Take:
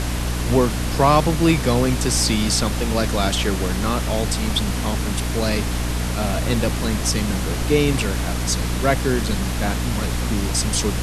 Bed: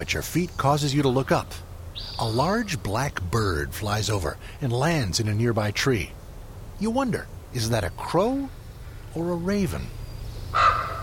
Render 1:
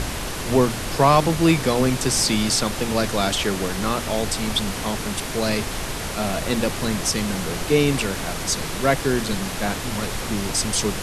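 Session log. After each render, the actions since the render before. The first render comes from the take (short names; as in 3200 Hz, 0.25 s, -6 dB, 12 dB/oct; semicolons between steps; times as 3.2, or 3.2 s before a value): de-hum 60 Hz, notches 5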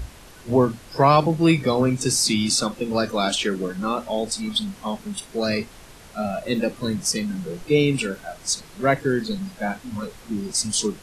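noise print and reduce 17 dB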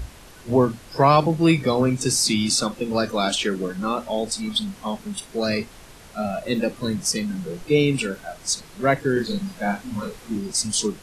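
9.13–10.38 doubler 35 ms -3.5 dB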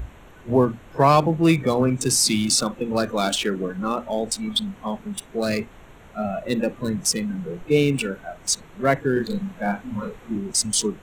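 Wiener smoothing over 9 samples; high shelf 8800 Hz +7.5 dB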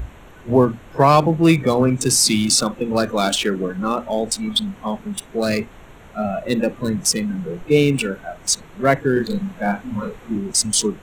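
gain +3.5 dB; limiter -2 dBFS, peak gain reduction 1.5 dB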